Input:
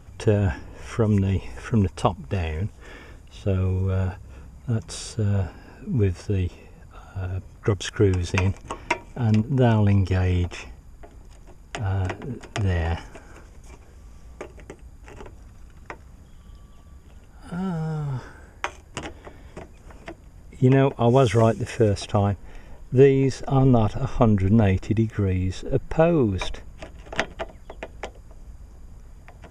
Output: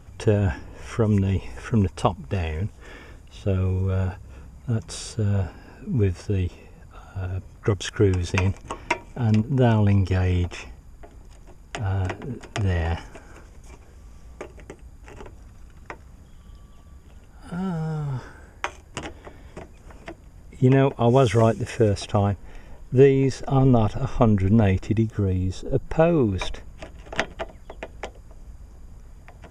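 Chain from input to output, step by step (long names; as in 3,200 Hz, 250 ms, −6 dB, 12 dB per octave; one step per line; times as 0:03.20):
0:25.03–0:25.86: parametric band 2,100 Hz −13 dB 0.7 octaves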